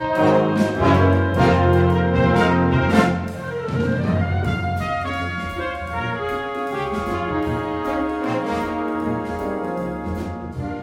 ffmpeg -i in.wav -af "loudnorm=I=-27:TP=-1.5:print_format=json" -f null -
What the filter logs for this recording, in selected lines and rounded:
"input_i" : "-21.3",
"input_tp" : "-1.7",
"input_lra" : "7.8",
"input_thresh" : "-31.3",